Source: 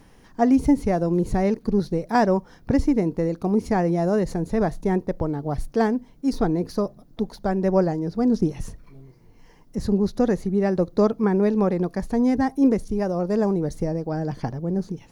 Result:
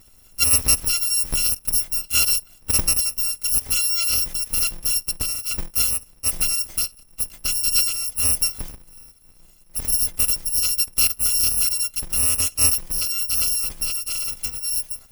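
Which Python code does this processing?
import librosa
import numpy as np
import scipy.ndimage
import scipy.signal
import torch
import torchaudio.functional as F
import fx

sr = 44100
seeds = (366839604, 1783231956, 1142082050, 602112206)

y = fx.bit_reversed(x, sr, seeds[0], block=256)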